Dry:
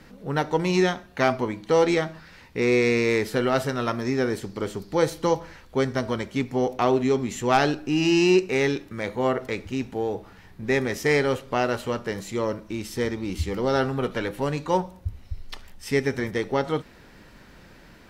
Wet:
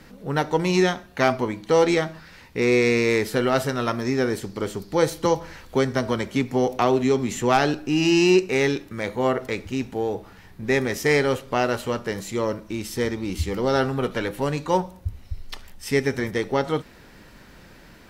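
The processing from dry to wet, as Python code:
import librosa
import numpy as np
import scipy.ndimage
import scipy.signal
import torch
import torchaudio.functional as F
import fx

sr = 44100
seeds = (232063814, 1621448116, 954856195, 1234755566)

y = fx.high_shelf(x, sr, hz=7300.0, db=4.5)
y = fx.band_squash(y, sr, depth_pct=40, at=(5.25, 7.74))
y = y * 10.0 ** (1.5 / 20.0)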